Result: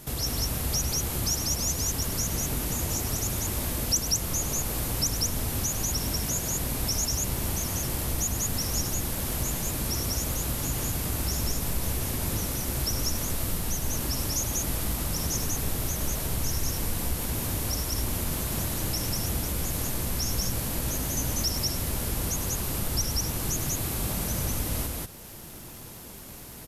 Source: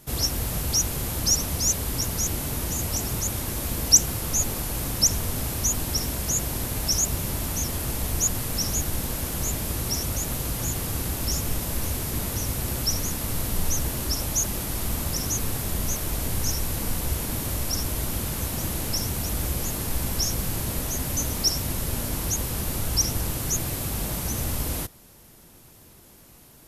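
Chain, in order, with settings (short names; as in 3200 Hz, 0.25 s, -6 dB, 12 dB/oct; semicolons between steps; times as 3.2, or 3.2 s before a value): compressor 2:1, threshold -41 dBFS, peak gain reduction 16.5 dB; crackle 66/s -45 dBFS; on a send: loudspeakers at several distances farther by 35 m -11 dB, 66 m -1 dB; on the sum: gain +5 dB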